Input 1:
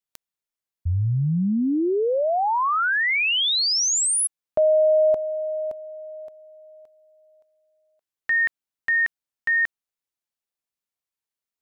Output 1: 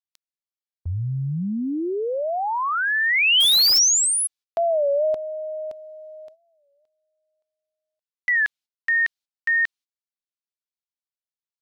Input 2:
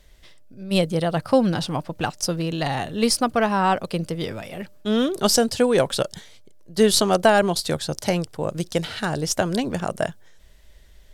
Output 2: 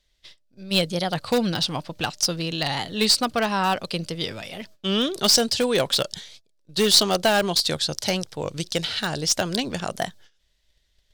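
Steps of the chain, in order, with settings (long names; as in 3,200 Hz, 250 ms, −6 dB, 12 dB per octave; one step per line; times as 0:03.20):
parametric band 4,200 Hz +12 dB 1.8 octaves
noise gate −42 dBFS, range −15 dB
in parallel at −11 dB: wrap-around overflow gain 8.5 dB
on the sum: wow of a warped record 33 1/3 rpm, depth 160 cents
level −6 dB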